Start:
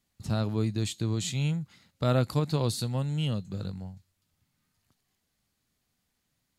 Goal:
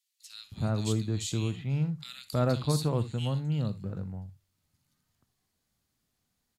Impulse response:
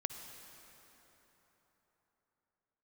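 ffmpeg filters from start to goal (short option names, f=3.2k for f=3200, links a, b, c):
-filter_complex "[0:a]acrossover=split=2300[a][b];[a]adelay=320[c];[c][b]amix=inputs=2:normalize=0[d];[1:a]atrim=start_sample=2205,atrim=end_sample=3528[e];[d][e]afir=irnorm=-1:irlink=0"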